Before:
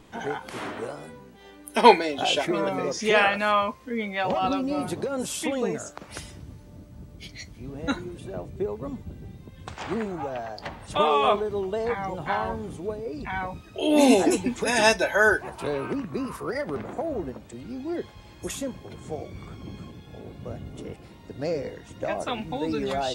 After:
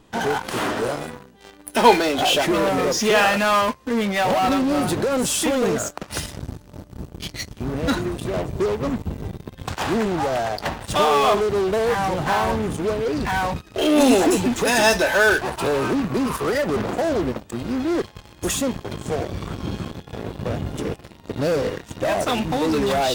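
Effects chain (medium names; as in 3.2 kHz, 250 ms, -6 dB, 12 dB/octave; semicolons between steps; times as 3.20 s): band-stop 2.2 kHz, Q 8.7; in parallel at -8 dB: fuzz box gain 37 dB, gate -42 dBFS; on the sum: trim -1 dB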